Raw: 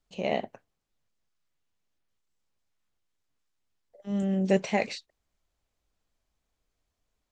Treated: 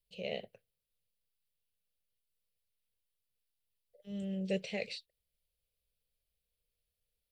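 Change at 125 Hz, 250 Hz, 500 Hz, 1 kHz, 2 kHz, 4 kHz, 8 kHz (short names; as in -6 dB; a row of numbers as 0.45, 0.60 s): -10.5, -11.0, -10.5, -20.0, -9.0, -4.0, -11.5 dB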